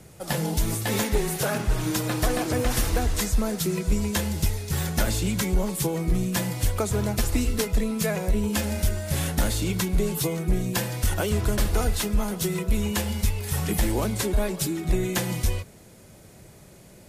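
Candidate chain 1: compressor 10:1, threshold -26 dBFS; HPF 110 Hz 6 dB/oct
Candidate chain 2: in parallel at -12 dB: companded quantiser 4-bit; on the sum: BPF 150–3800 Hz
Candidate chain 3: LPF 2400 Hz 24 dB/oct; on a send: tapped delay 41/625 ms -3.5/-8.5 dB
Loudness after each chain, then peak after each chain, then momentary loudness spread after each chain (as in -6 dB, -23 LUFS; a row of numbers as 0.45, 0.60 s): -32.5, -27.5, -25.5 LUFS; -15.5, -11.0, -9.5 dBFS; 3, 5, 3 LU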